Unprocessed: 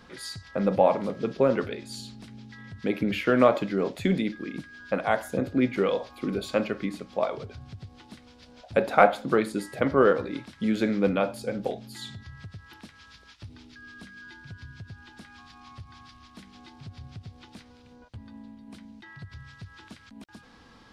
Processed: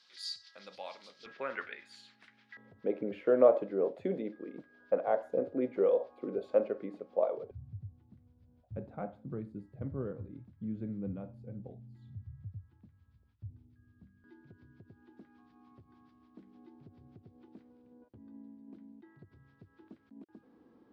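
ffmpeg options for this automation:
-af "asetnsamples=n=441:p=0,asendcmd='1.26 bandpass f 1800;2.57 bandpass f 510;7.51 bandpass f 100;14.24 bandpass f 340',bandpass=f=4500:t=q:w=2.4:csg=0"

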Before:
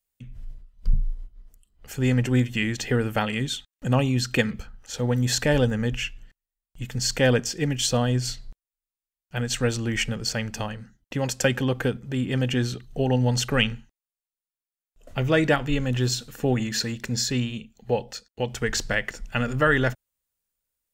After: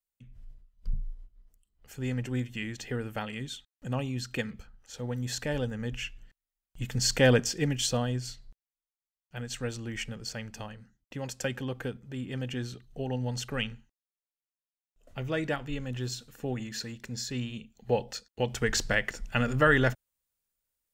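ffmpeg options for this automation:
-af "volume=2.24,afade=t=in:st=5.74:d=1.09:silence=0.354813,afade=t=out:st=7.41:d=0.88:silence=0.354813,afade=t=in:st=17.26:d=0.79:silence=0.375837"

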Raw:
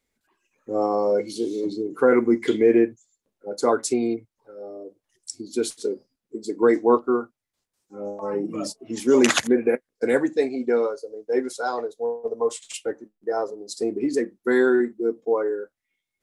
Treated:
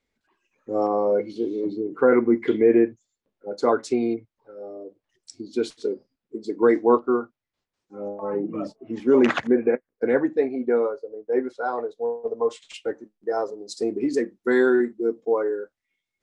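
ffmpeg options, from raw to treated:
-af "asetnsamples=n=441:p=0,asendcmd='0.87 lowpass f 2300;2.87 lowpass f 3900;8.08 lowpass f 1900;11.89 lowpass f 3800;12.85 lowpass f 7100',lowpass=5200"

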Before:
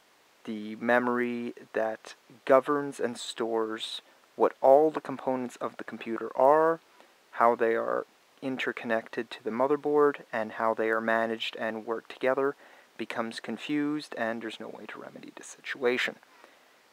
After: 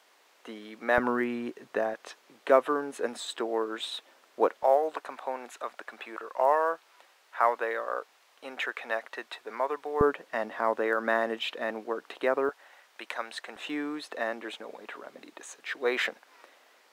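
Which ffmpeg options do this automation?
-af "asetnsamples=n=441:p=0,asendcmd='0.98 highpass f 110;1.94 highpass f 280;4.63 highpass f 650;10.01 highpass f 240;12.49 highpass f 710;13.56 highpass f 360',highpass=390"

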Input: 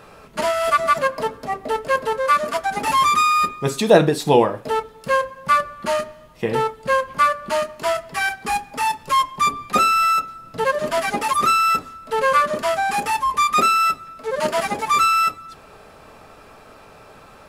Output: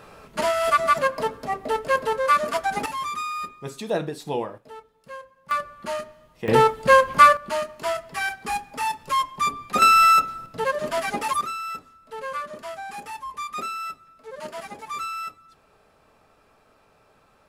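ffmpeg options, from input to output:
-af "asetnsamples=n=441:p=0,asendcmd='2.86 volume volume -13dB;4.58 volume volume -20dB;5.51 volume volume -8dB;6.48 volume volume 4.5dB;7.37 volume volume -5dB;9.82 volume volume 2.5dB;10.46 volume volume -4.5dB;11.41 volume volume -14.5dB',volume=0.794"

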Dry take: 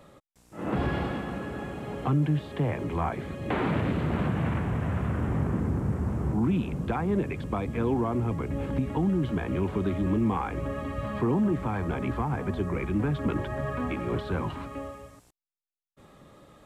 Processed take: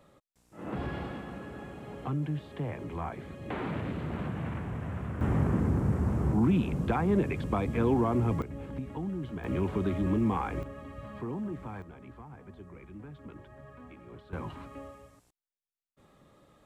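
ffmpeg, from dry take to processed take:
-af "asetnsamples=n=441:p=0,asendcmd='5.21 volume volume 0.5dB;8.42 volume volume -9.5dB;9.44 volume volume -2dB;10.63 volume volume -11dB;11.82 volume volume -19dB;14.33 volume volume -7.5dB',volume=0.422"

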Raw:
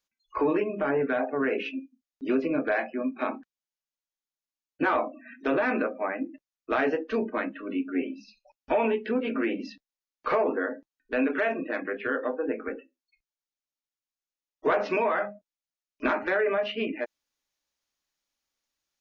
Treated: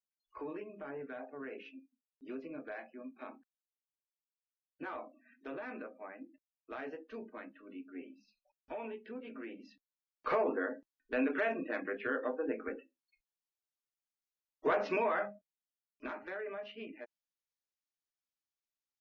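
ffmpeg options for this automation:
-af "volume=0.473,afade=t=in:st=9.68:d=0.63:silence=0.266073,afade=t=out:st=15.19:d=0.85:silence=0.316228"

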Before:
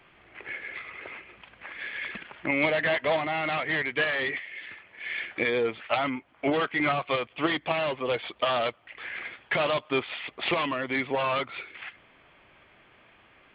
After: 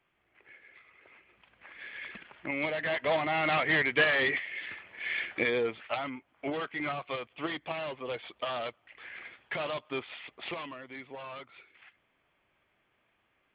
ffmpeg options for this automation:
-af "volume=1.19,afade=t=in:st=1.03:d=0.95:silence=0.298538,afade=t=in:st=2.81:d=0.75:silence=0.354813,afade=t=out:st=4.87:d=1.18:silence=0.316228,afade=t=out:st=10.2:d=0.68:silence=0.421697"

